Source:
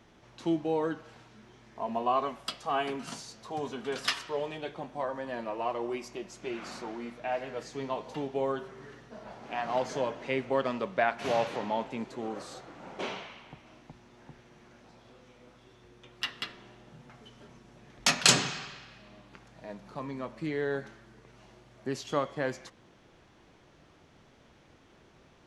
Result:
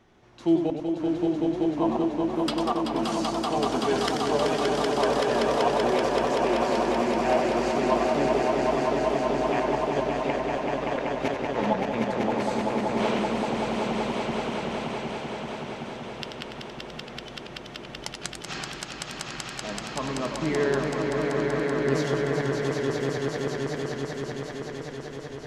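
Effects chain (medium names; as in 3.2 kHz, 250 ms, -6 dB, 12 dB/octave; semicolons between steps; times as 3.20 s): treble shelf 2.3 kHz -4 dB; level rider gain up to 7 dB; inverted gate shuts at -14 dBFS, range -40 dB; flange 0.12 Hz, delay 2.6 ms, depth 2.5 ms, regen +76%; echo with a slow build-up 191 ms, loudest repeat 5, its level -4.5 dB; modulated delay 92 ms, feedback 51%, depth 187 cents, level -8 dB; trim +4 dB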